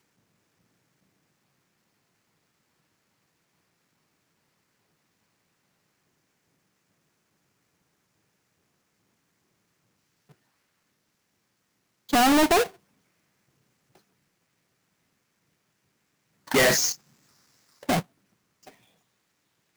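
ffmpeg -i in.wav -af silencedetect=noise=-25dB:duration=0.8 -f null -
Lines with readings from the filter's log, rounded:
silence_start: 0.00
silence_end: 12.13 | silence_duration: 12.13
silence_start: 12.63
silence_end: 16.51 | silence_duration: 3.88
silence_start: 16.92
silence_end: 17.89 | silence_duration: 0.97
silence_start: 17.99
silence_end: 19.77 | silence_duration: 1.78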